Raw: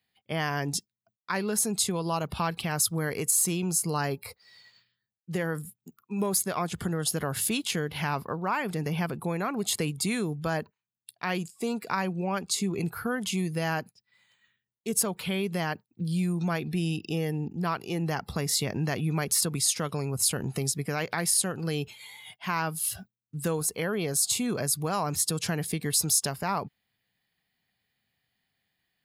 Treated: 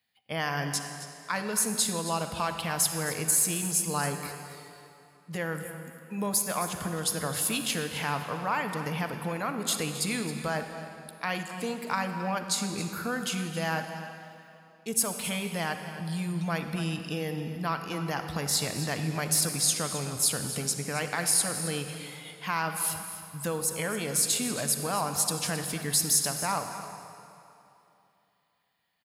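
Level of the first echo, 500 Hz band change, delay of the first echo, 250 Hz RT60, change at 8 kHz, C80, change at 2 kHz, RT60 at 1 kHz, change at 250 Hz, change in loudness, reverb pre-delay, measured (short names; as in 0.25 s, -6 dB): -13.5 dB, -2.0 dB, 0.267 s, 2.9 s, +1.0 dB, 7.0 dB, +1.0 dB, 2.9 s, -3.0 dB, -0.5 dB, 38 ms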